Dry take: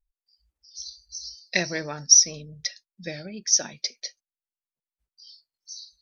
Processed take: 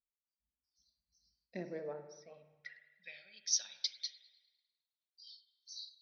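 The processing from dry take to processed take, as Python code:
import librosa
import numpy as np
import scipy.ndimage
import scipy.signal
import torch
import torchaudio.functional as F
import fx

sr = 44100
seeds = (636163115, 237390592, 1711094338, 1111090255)

y = fx.peak_eq(x, sr, hz=320.0, db=-11.0, octaves=0.38)
y = fx.filter_sweep_bandpass(y, sr, from_hz=250.0, to_hz=3700.0, start_s=1.49, end_s=3.26, q=4.1)
y = fx.air_absorb(y, sr, metres=280.0, at=(1.93, 3.27))
y = fx.rev_spring(y, sr, rt60_s=1.2, pass_ms=(47, 55), chirp_ms=55, drr_db=8.5)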